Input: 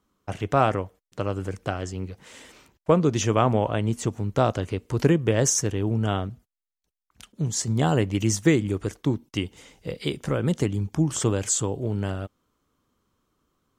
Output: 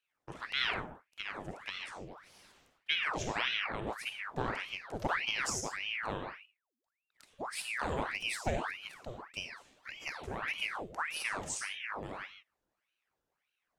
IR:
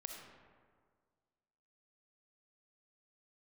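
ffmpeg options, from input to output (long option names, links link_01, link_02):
-filter_complex "[0:a]asettb=1/sr,asplit=3[link_01][link_02][link_03];[link_01]atrim=end=8.704[link_04];[link_02]atrim=start=8.7:end=9.3,asetpts=PTS-STARTPTS,afade=type=in:duration=0.004:curve=qsin,afade=type=out:start_time=0.596:duration=0.004:curve=qsin,lowshelf=frequency=320:gain=-9.5[link_05];[link_03]atrim=start=9.296[link_06];[link_04][link_05]acrossfade=duration=0.004:curve1=hsin:curve2=qsin[link_07];[link_07][link_06]acrossfade=duration=0.004:curve1=qsin:curve2=hsin[link_08];[1:a]atrim=start_sample=2205,afade=type=out:start_time=0.25:duration=0.01,atrim=end_sample=11466,asetrate=52920,aresample=44100[link_09];[link_08][link_09]afir=irnorm=-1:irlink=0,aeval=exprs='val(0)*sin(2*PI*1500*n/s+1500*0.85/1.7*sin(2*PI*1.7*n/s))':channel_layout=same,volume=-5dB"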